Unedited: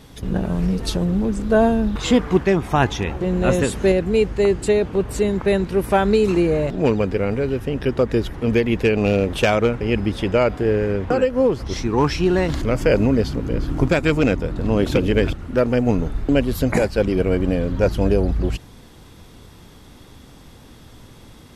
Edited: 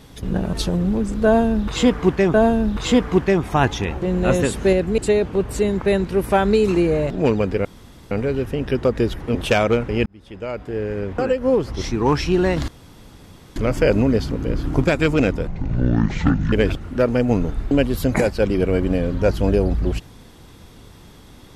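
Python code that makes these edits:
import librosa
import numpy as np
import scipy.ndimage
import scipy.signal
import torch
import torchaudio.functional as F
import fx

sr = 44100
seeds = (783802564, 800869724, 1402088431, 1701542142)

y = fx.edit(x, sr, fx.cut(start_s=0.53, length_s=0.28),
    fx.repeat(start_s=1.53, length_s=1.09, count=2),
    fx.cut(start_s=4.17, length_s=0.41),
    fx.insert_room_tone(at_s=7.25, length_s=0.46),
    fx.cut(start_s=8.49, length_s=0.78),
    fx.fade_in_span(start_s=9.98, length_s=1.53),
    fx.insert_room_tone(at_s=12.6, length_s=0.88),
    fx.speed_span(start_s=14.51, length_s=0.59, speed=0.56), tone=tone)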